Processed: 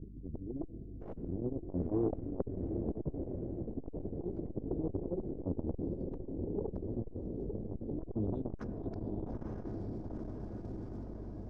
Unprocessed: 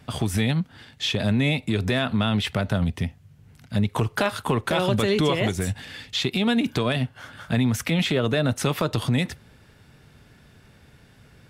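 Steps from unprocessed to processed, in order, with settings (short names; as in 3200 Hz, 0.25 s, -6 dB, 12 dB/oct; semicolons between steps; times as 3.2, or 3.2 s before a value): elliptic band-stop 200–5900 Hz, stop band 50 dB; treble ducked by the level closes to 700 Hz, closed at -20.5 dBFS; auto swell 0.715 s; reverse; compressor 6:1, threshold -41 dBFS, peak gain reduction 16.5 dB; reverse; formant-preserving pitch shift -2.5 st; added harmonics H 3 -6 dB, 6 -7 dB, 8 -25 dB, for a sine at -31 dBFS; hum 50 Hz, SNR 11 dB; low-pass sweep 470 Hz -> 2200 Hz, 6.55–9.54; diffused feedback echo 0.909 s, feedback 67%, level -5 dB; on a send at -15 dB: reverb RT60 3.0 s, pre-delay 3 ms; on the sum: core saturation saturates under 240 Hz; gain +9 dB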